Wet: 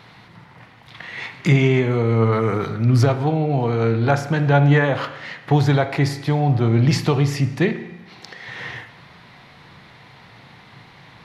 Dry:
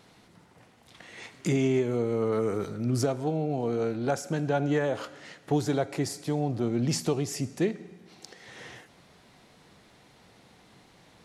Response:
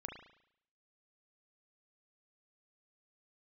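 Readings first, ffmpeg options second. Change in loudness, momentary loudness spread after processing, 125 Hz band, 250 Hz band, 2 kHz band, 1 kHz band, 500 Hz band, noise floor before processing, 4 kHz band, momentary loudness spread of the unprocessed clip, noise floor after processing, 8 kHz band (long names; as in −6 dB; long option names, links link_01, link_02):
+10.0 dB, 16 LU, +15.0 dB, +8.0 dB, +14.0 dB, +11.5 dB, +6.5 dB, −58 dBFS, +9.0 dB, 18 LU, −47 dBFS, −0.5 dB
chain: -filter_complex "[0:a]equalizer=frequency=125:width_type=o:width=1:gain=10,equalizer=frequency=1000:width_type=o:width=1:gain=8,equalizer=frequency=2000:width_type=o:width=1:gain=9,equalizer=frequency=4000:width_type=o:width=1:gain=7,equalizer=frequency=8000:width_type=o:width=1:gain=-9,asplit=2[link_01][link_02];[1:a]atrim=start_sample=2205,lowshelf=frequency=180:gain=5[link_03];[link_02][link_03]afir=irnorm=-1:irlink=0,volume=-0.5dB[link_04];[link_01][link_04]amix=inputs=2:normalize=0"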